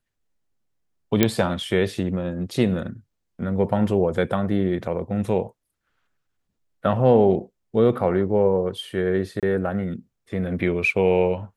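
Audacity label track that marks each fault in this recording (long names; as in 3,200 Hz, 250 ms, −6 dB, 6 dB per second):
1.230000	1.230000	click −2 dBFS
9.400000	9.430000	drop-out 27 ms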